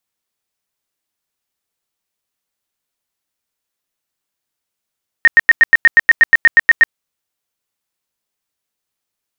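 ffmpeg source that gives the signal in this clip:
-f lavfi -i "aevalsrc='0.75*sin(2*PI*1850*mod(t,0.12))*lt(mod(t,0.12),47/1850)':d=1.68:s=44100"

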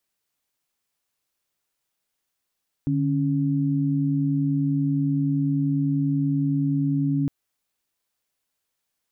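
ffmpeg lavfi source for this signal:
-f lavfi -i "aevalsrc='0.075*(sin(2*PI*146.83*t)+sin(2*PI*277.18*t))':d=4.41:s=44100"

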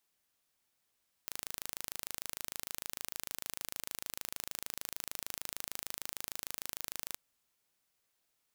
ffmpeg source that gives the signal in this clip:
-f lavfi -i "aevalsrc='0.266*eq(mod(n,1658),0)':d=5.87:s=44100"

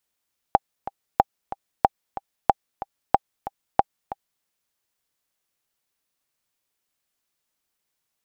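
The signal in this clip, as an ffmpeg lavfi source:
-f lavfi -i "aevalsrc='pow(10,(-1-15.5*gte(mod(t,2*60/185),60/185))/20)*sin(2*PI*795*mod(t,60/185))*exp(-6.91*mod(t,60/185)/0.03)':d=3.89:s=44100"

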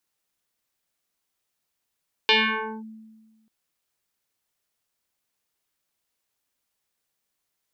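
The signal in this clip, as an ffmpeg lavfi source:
-f lavfi -i "aevalsrc='0.211*pow(10,-3*t/1.45)*sin(2*PI*220*t+5.7*clip(1-t/0.54,0,1)*sin(2*PI*2.99*220*t))':d=1.19:s=44100"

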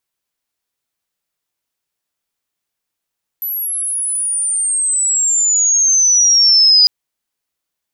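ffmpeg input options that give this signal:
-f lavfi -i "aevalsrc='pow(10,(-18.5+13*t/3.45)/20)*sin(2*PI*12000*3.45/log(4900/12000)*(exp(log(4900/12000)*t/3.45)-1))':d=3.45:s=44100"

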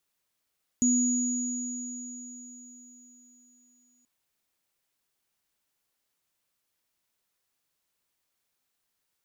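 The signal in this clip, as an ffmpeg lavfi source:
-f lavfi -i "aevalsrc='0.0891*pow(10,-3*t/3.91)*sin(2*PI*247*t)+0.0668*pow(10,-3*t/4.54)*sin(2*PI*6810*t)':d=3.23:s=44100"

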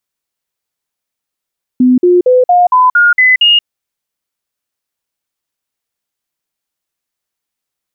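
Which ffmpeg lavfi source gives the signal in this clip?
-f lavfi -i "aevalsrc='0.631*clip(min(mod(t,0.23),0.18-mod(t,0.23))/0.005,0,1)*sin(2*PI*252*pow(2,floor(t/0.23)/2)*mod(t,0.23))':d=1.84:s=44100"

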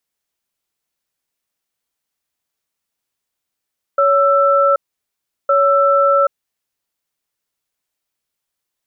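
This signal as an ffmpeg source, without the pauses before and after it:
-f lavfi -i "aevalsrc='0.237*(sin(2*PI*560*t)+sin(2*PI*1330*t))*clip(min(mod(t,1.51),0.78-mod(t,1.51))/0.005,0,1)':d=2.7:s=44100"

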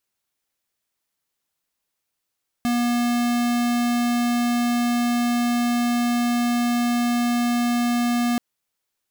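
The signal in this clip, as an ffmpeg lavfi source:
-f lavfi -i "aevalsrc='0.0891*(2*lt(mod(240*t,1),0.5)-1)':d=5.73:s=44100"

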